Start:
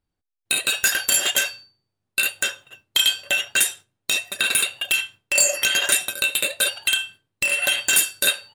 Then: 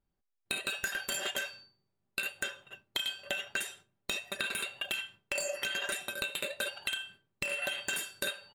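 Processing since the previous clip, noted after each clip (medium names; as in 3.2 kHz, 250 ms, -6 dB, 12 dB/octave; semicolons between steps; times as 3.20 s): treble shelf 3.3 kHz -11.5 dB; comb 5.1 ms, depth 38%; compression, threshold -30 dBFS, peak gain reduction 11.5 dB; trim -2 dB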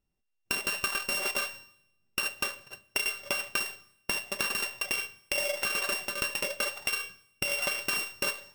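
sorted samples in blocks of 16 samples; in parallel at -7 dB: hysteresis with a dead band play -45.5 dBFS; on the sum: Schroeder reverb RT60 0.79 s, combs from 27 ms, DRR 18 dB; trim +1 dB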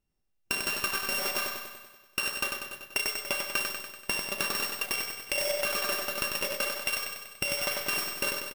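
feedback delay 96 ms, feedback 60%, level -4.5 dB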